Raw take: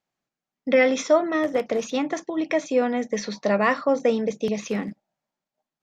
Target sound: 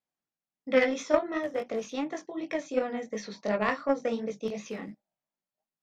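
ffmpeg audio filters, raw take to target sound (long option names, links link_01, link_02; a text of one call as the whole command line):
ffmpeg -i in.wav -af "flanger=delay=18:depth=4.6:speed=2.8,aeval=exprs='0.398*(cos(1*acos(clip(val(0)/0.398,-1,1)))-cos(1*PI/2))+0.0631*(cos(3*acos(clip(val(0)/0.398,-1,1)))-cos(3*PI/2))+0.00282*(cos(7*acos(clip(val(0)/0.398,-1,1)))-cos(7*PI/2))':channel_layout=same" out.wav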